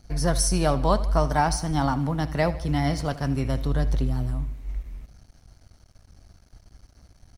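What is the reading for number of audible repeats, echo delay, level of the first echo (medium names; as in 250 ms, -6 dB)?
3, 78 ms, -16.5 dB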